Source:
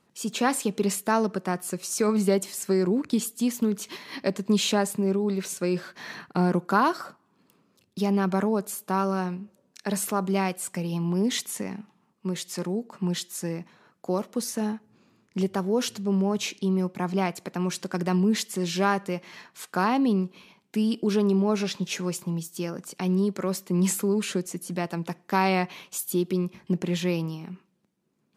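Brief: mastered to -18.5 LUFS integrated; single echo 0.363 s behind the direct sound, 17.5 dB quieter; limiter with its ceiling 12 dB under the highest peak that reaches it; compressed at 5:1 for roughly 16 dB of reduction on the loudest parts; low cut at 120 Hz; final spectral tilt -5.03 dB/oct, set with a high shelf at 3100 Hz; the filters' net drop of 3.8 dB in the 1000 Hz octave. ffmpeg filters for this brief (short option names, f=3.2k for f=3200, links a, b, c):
-af "highpass=120,equalizer=f=1k:t=o:g=-4,highshelf=f=3.1k:g=-8,acompressor=threshold=-38dB:ratio=5,alimiter=level_in=8.5dB:limit=-24dB:level=0:latency=1,volume=-8.5dB,aecho=1:1:363:0.133,volume=24.5dB"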